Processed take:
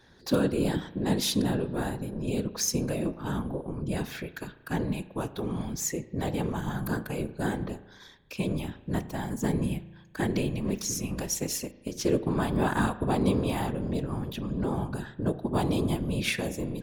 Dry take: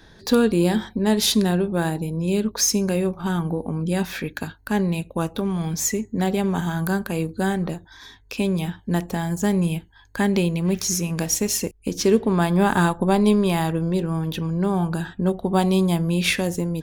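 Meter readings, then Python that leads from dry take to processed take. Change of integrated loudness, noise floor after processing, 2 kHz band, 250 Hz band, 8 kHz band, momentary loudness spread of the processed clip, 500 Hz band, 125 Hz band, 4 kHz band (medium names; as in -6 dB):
-8.0 dB, -54 dBFS, -8.0 dB, -8.0 dB, -8.0 dB, 8 LU, -8.0 dB, -7.0 dB, -8.0 dB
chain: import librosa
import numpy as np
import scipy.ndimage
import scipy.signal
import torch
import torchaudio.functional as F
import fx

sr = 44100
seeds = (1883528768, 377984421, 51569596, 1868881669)

y = fx.whisperise(x, sr, seeds[0])
y = fx.rev_spring(y, sr, rt60_s=1.2, pass_ms=(36,), chirp_ms=45, drr_db=15.0)
y = y * librosa.db_to_amplitude(-8.0)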